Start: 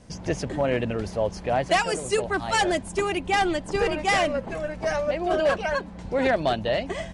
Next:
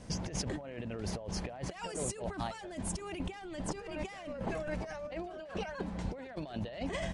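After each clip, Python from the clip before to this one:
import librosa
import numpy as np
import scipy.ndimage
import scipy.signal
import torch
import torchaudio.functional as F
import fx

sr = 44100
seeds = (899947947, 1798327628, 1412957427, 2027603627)

y = fx.over_compress(x, sr, threshold_db=-34.0, ratio=-1.0)
y = y * librosa.db_to_amplitude(-6.5)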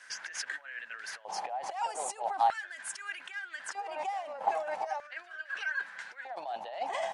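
y = fx.filter_lfo_highpass(x, sr, shape='square', hz=0.4, low_hz=800.0, high_hz=1600.0, q=7.5)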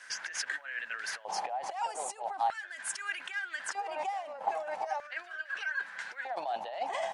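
y = fx.rider(x, sr, range_db=5, speed_s=0.5)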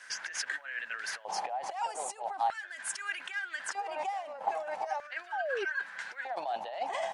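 y = fx.spec_paint(x, sr, seeds[0], shape='fall', start_s=5.32, length_s=0.33, low_hz=370.0, high_hz=910.0, level_db=-34.0)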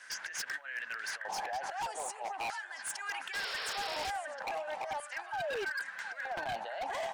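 y = fx.echo_stepped(x, sr, ms=714, hz=1400.0, octaves=1.4, feedback_pct=70, wet_db=-5.5)
y = fx.spec_paint(y, sr, seeds[1], shape='noise', start_s=3.33, length_s=0.78, low_hz=400.0, high_hz=5600.0, level_db=-38.0)
y = 10.0 ** (-29.0 / 20.0) * (np.abs((y / 10.0 ** (-29.0 / 20.0) + 3.0) % 4.0 - 2.0) - 1.0)
y = y * librosa.db_to_amplitude(-1.5)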